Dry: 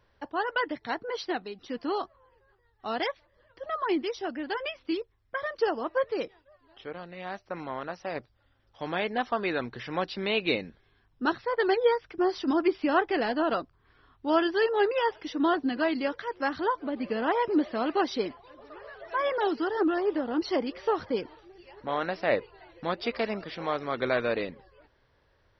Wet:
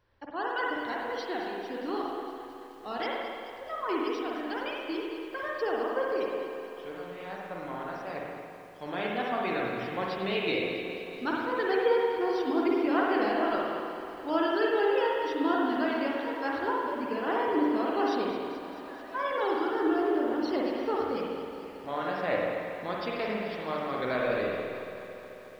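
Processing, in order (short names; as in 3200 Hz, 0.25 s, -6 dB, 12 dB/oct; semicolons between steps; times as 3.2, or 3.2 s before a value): spring tank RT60 1.9 s, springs 47/57 ms, chirp 55 ms, DRR -3 dB; lo-fi delay 0.217 s, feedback 80%, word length 8-bit, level -14 dB; gain -6 dB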